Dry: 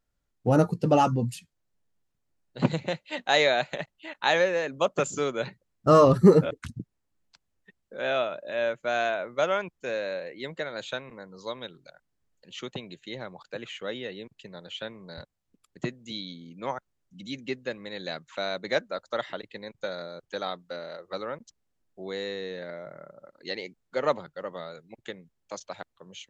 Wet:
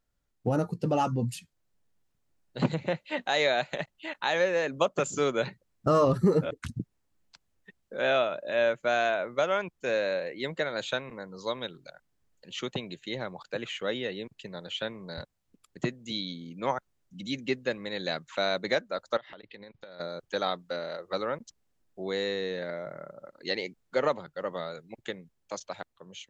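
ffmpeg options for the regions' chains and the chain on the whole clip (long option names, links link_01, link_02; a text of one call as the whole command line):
ffmpeg -i in.wav -filter_complex "[0:a]asettb=1/sr,asplit=3[link_01][link_02][link_03];[link_01]atrim=end=2.744[link_04];[link_02]atrim=start=2.74:end=3.22,asetpts=PTS-STARTPTS,afade=type=in:duration=0.004:curve=qsin,afade=type=out:start_time=0.476:duration=0.004:curve=qsin,acrossover=split=2800[link_05][link_06];[link_06]acompressor=threshold=-51dB:ratio=4:attack=1:release=60[link_07];[link_05][link_07]amix=inputs=2:normalize=0,bandreject=frequency=740:width=19[link_08];[link_03]atrim=start=3.216[link_09];[link_04][link_08]acrossfade=duration=0.004:curve1=hsin:curve2=qsin[link_10];[link_10][link_09]acrossfade=duration=0.004:curve1=qsin:curve2=hsin,asettb=1/sr,asplit=3[link_11][link_12][link_13];[link_11]atrim=end=19.174[link_14];[link_12]atrim=start=19.17:end=20,asetpts=PTS-STARTPTS,afade=type=in:duration=0.004:curve=qsin,afade=type=out:start_time=0.826:duration=0.004:curve=qsin,lowpass=frequency=4600:width=0.5412,lowpass=frequency=4600:width=1.3066,acompressor=threshold=-45dB:ratio=20:attack=3.2:release=140:knee=1:detection=peak[link_15];[link_13]atrim=start=19.996[link_16];[link_14][link_15]acrossfade=duration=0.004:curve1=hsin:curve2=qsin[link_17];[link_17][link_16]acrossfade=duration=0.004:curve1=qsin:curve2=hsin,alimiter=limit=-17dB:level=0:latency=1:release=406,dynaudnorm=framelen=560:gausssize=5:maxgain=3dB" out.wav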